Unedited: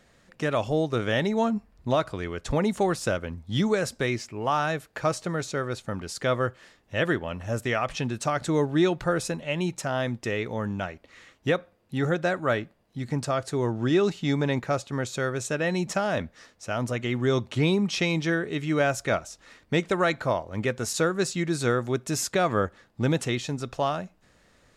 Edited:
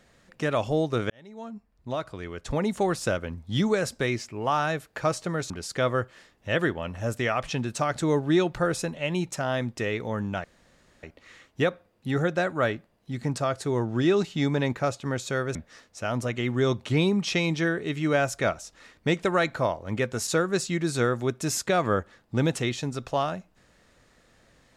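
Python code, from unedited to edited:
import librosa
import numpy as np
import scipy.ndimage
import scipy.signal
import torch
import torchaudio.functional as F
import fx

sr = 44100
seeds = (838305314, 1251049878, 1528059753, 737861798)

y = fx.edit(x, sr, fx.fade_in_span(start_s=1.1, length_s=1.92),
    fx.cut(start_s=5.5, length_s=0.46),
    fx.insert_room_tone(at_s=10.9, length_s=0.59),
    fx.cut(start_s=15.42, length_s=0.79), tone=tone)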